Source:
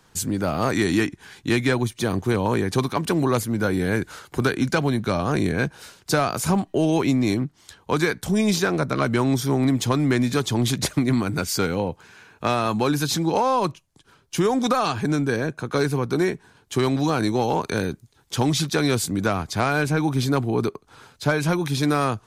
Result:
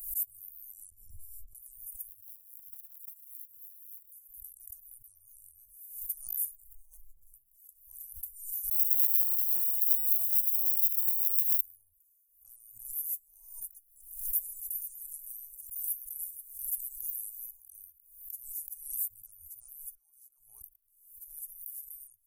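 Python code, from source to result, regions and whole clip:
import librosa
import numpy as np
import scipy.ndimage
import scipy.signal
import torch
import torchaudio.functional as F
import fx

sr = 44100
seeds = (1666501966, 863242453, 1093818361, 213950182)

y = fx.chain(x, sr, fx.moving_average(points=20),
    fx.doubler(ms=13.0, db=-4),
    fx.env_flatten(amount_pct=100), at=(0.9, 1.55))
y = fx.chain(y, sr, fx.median_filter(points=15),
    fx.highpass(hz=270.0, slope=6), at=(2.08, 4.12))
y = fx.chain(y, sr, fx.lower_of_two(delay_ms=5.3),
    fx.lowpass(hz=1200.0, slope=6),
    fx.band_squash(depth_pct=100), at=(6.67, 7.34))
y = fx.chain(y, sr, fx.sample_hold(seeds[0], rate_hz=3900.0, jitter_pct=0),
    fx.spectral_comp(ratio=2.0), at=(8.71, 11.61))
y = fx.chain(y, sr, fx.echo_single(ms=485, db=-15.0),
    fx.spectral_comp(ratio=2.0), at=(13.61, 17.51))
y = fx.chain(y, sr, fx.bandpass_q(hz=1500.0, q=1.1),
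    fx.env_flatten(amount_pct=50), at=(19.95, 20.61))
y = scipy.signal.sosfilt(scipy.signal.cheby2(4, 70, [140.0, 4100.0], 'bandstop', fs=sr, output='sos'), y)
y = fx.tilt_eq(y, sr, slope=2.5)
y = fx.pre_swell(y, sr, db_per_s=83.0)
y = y * 10.0 ** (1.0 / 20.0)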